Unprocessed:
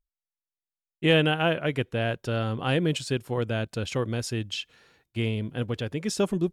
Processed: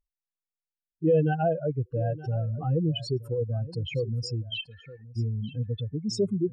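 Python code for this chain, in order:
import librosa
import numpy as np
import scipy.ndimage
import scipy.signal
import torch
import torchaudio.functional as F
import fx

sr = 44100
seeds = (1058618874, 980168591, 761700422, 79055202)

p1 = fx.spec_expand(x, sr, power=3.8)
y = p1 + fx.echo_single(p1, sr, ms=922, db=-17.0, dry=0)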